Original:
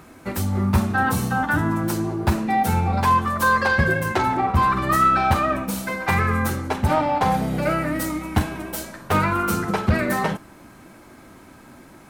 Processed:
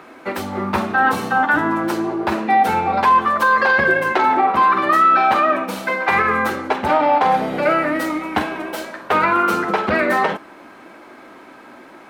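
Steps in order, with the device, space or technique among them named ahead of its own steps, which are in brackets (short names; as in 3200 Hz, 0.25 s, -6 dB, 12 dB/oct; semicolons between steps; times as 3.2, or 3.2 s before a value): 4.12–5.71 HPF 140 Hz 12 dB/oct; DJ mixer with the lows and highs turned down (three-band isolator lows -23 dB, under 270 Hz, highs -15 dB, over 4100 Hz; limiter -14 dBFS, peak gain reduction 5.5 dB); gain +7.5 dB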